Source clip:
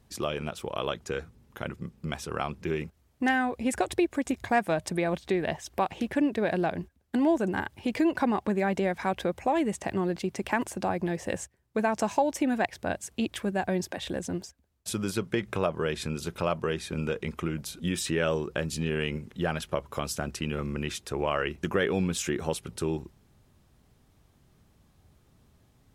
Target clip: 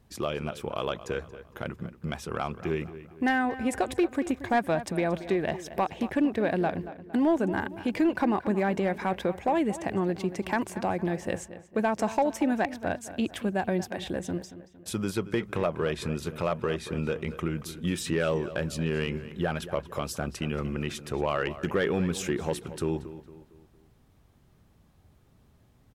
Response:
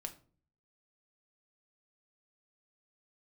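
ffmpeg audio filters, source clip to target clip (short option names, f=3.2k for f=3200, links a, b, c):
-filter_complex "[0:a]highshelf=f=12k:g=8.5,asplit=2[a][b];[b]aeval=exprs='0.112*(abs(mod(val(0)/0.112+3,4)-2)-1)':c=same,volume=-4dB[c];[a][c]amix=inputs=2:normalize=0,highshelf=f=4.4k:g=-8,asplit=2[d][e];[e]adelay=229,lowpass=f=3.6k:p=1,volume=-14dB,asplit=2[f][g];[g]adelay=229,lowpass=f=3.6k:p=1,volume=0.45,asplit=2[h][i];[i]adelay=229,lowpass=f=3.6k:p=1,volume=0.45,asplit=2[j][k];[k]adelay=229,lowpass=f=3.6k:p=1,volume=0.45[l];[d][f][h][j][l]amix=inputs=5:normalize=0,volume=-3.5dB"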